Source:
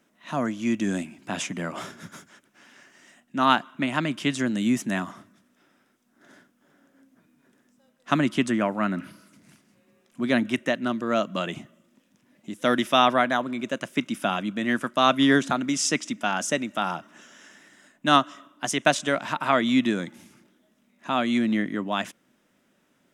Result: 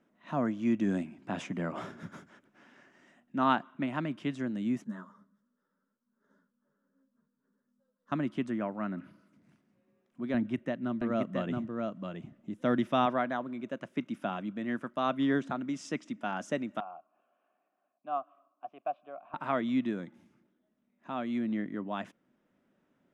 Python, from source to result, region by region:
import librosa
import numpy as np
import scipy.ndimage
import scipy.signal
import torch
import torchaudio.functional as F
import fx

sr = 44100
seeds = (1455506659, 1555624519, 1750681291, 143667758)

y = fx.chain(x, sr, fx.fixed_phaser(hz=490.0, stages=8),
    fx.ensemble(), at=(4.84, 8.12))
y = fx.chain(y, sr, fx.low_shelf(hz=170.0, db=11.0),
    fx.echo_single(ms=672, db=-5.0), at=(10.34, 13.06))
y = fx.chain(y, sr, fx.vowel_filter(vowel='a'),
    fx.air_absorb(metres=360.0), at=(16.8, 19.34))
y = fx.lowpass(y, sr, hz=1100.0, slope=6)
y = fx.rider(y, sr, range_db=10, speed_s=2.0)
y = y * 10.0 ** (-8.0 / 20.0)